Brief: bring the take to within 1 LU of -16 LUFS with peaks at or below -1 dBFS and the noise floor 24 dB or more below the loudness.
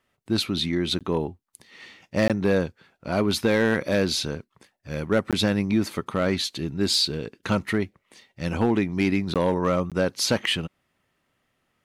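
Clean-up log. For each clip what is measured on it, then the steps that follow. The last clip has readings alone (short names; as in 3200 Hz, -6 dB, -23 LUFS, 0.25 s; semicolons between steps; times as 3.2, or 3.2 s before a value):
clipped 0.3%; flat tops at -12.5 dBFS; dropouts 5; longest dropout 17 ms; loudness -24.5 LUFS; peak -12.5 dBFS; loudness target -16.0 LUFS
-> clip repair -12.5 dBFS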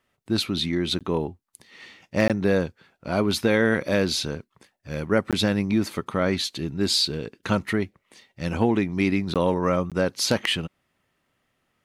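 clipped 0.0%; dropouts 5; longest dropout 17 ms
-> interpolate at 0.99/2.28/5.31/9.34/9.9, 17 ms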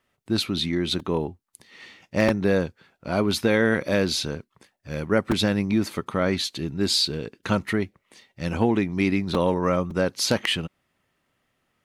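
dropouts 0; loudness -24.5 LUFS; peak -4.5 dBFS; loudness target -16.0 LUFS
-> gain +8.5 dB; limiter -1 dBFS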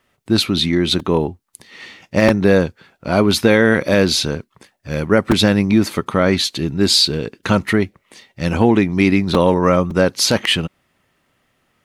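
loudness -16.0 LUFS; peak -1.0 dBFS; noise floor -66 dBFS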